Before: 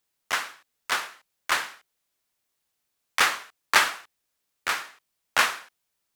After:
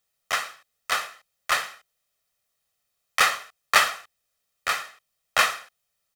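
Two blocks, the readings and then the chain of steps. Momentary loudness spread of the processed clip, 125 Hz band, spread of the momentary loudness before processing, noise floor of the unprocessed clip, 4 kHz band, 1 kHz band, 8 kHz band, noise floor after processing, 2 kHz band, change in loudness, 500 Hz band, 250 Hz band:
19 LU, can't be measured, 19 LU, −79 dBFS, +1.0 dB, +2.0 dB, +1.0 dB, −78 dBFS, +0.5 dB, +1.5 dB, +3.0 dB, −4.0 dB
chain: comb filter 1.6 ms, depth 58%

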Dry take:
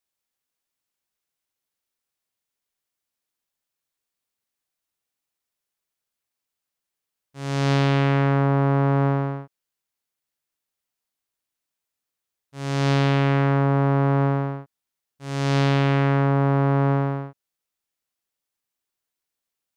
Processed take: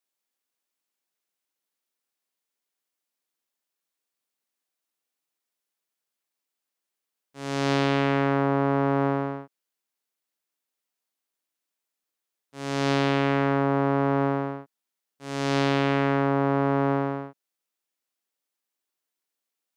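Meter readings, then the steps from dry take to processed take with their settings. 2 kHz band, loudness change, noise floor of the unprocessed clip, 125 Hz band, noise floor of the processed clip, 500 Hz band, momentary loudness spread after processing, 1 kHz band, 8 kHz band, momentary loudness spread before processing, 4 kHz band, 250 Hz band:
−1.0 dB, −3.5 dB, −85 dBFS, −9.5 dB, below −85 dBFS, 0.0 dB, 11 LU, −0.5 dB, can't be measured, 11 LU, −1.0 dB, −1.5 dB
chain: Chebyshev high-pass filter 250 Hz, order 2

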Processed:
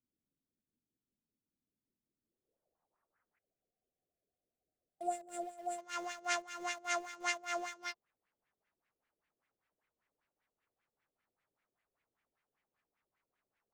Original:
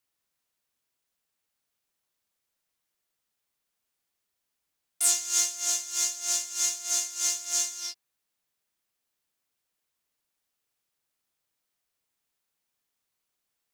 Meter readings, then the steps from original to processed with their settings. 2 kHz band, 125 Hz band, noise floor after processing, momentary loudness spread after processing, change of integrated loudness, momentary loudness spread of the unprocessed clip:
+1.5 dB, can't be measured, below −85 dBFS, 8 LU, −13.5 dB, 4 LU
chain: auto-filter low-pass sine 5.1 Hz 420–2,200 Hz
dynamic equaliser 840 Hz, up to +3 dB, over −51 dBFS, Q 0.91
gain on a spectral selection 0:03.39–0:05.79, 790–7,100 Hz −23 dB
low-pass filter sweep 250 Hz → 9,700 Hz, 0:02.17–0:04.23
in parallel at −9 dB: centre clipping without the shift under −49 dBFS

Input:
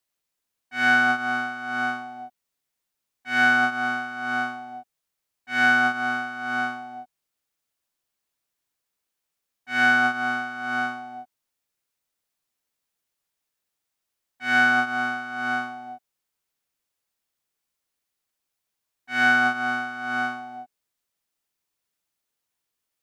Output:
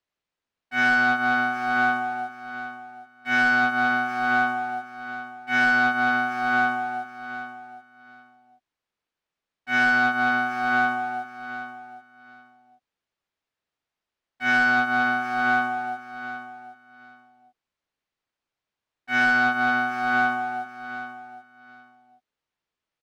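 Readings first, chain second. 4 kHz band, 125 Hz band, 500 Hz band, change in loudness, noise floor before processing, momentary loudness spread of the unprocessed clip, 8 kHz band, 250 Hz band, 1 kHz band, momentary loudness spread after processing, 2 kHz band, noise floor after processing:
−1.5 dB, +2.5 dB, +3.0 dB, +0.5 dB, −82 dBFS, 20 LU, can't be measured, +2.0 dB, +3.0 dB, 16 LU, +1.0 dB, below −85 dBFS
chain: Bessel low-pass filter 3,000 Hz, order 2
downward compressor 2.5 to 1, threshold −25 dBFS, peak gain reduction 7 dB
leveller curve on the samples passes 1
repeating echo 772 ms, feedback 19%, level −12.5 dB
level +3.5 dB

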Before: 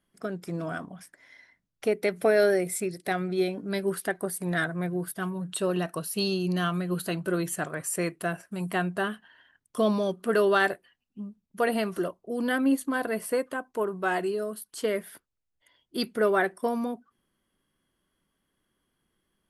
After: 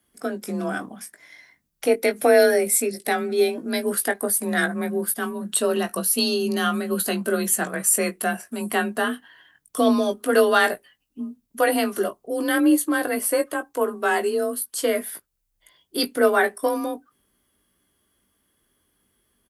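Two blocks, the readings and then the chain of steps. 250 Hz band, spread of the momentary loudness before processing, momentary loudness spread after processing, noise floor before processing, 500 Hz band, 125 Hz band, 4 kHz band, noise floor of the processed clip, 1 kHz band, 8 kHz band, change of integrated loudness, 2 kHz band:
+5.0 dB, 11 LU, 13 LU, −80 dBFS, +5.5 dB, can't be measured, +7.5 dB, −73 dBFS, +6.0 dB, +13.0 dB, +6.0 dB, +5.5 dB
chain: high-shelf EQ 7,100 Hz +12 dB
double-tracking delay 19 ms −8 dB
frequency shifter +32 Hz
level +4.5 dB

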